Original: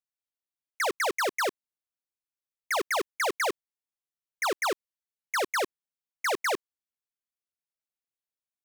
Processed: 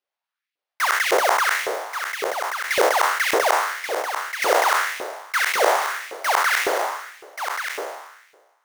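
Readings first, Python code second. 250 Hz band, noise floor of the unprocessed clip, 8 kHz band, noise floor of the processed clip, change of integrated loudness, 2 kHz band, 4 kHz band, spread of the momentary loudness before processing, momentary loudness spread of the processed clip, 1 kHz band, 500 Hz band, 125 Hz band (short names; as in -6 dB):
+4.0 dB, under -85 dBFS, +9.5 dB, under -85 dBFS, +8.0 dB, +11.0 dB, +9.0 dB, 5 LU, 10 LU, +11.5 dB, +9.5 dB, n/a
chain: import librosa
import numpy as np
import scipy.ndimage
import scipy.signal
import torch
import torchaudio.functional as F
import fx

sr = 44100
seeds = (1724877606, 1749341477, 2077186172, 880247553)

y = fx.spec_trails(x, sr, decay_s=1.28)
y = fx.sample_hold(y, sr, seeds[0], rate_hz=7700.0, jitter_pct=20)
y = y + 10.0 ** (-7.5 / 20.0) * np.pad(y, (int(1132 * sr / 1000.0), 0))[:len(y)]
y = fx.filter_lfo_highpass(y, sr, shape='saw_up', hz=1.8, low_hz=410.0, high_hz=2500.0, q=2.3)
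y = F.gain(torch.from_numpy(y), 1.0).numpy()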